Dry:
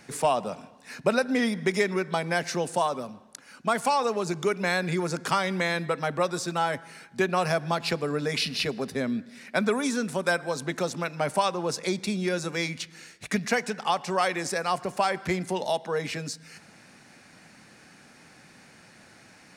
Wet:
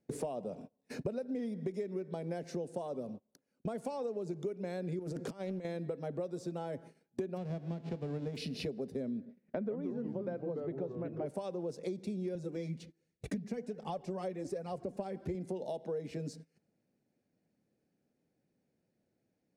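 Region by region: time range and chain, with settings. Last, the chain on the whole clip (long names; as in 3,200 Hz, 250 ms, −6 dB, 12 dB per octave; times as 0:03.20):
0:04.99–0:05.65: compressor whose output falls as the input rises −31 dBFS, ratio −0.5 + highs frequency-modulated by the lows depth 0.19 ms
0:07.36–0:08.35: spectral envelope flattened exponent 0.3 + head-to-tape spacing loss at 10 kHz 29 dB
0:09.25–0:11.26: low-pass filter 2,000 Hz + delay with pitch and tempo change per echo 97 ms, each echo −3 semitones, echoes 3, each echo −6 dB
0:12.35–0:15.35: low-shelf EQ 260 Hz +9 dB + flanger 1.3 Hz, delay 0.8 ms, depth 4.7 ms, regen +23%
whole clip: noise gate −42 dBFS, range −31 dB; low shelf with overshoot 750 Hz +14 dB, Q 1.5; downward compressor 6 to 1, threshold −30 dBFS; level −7 dB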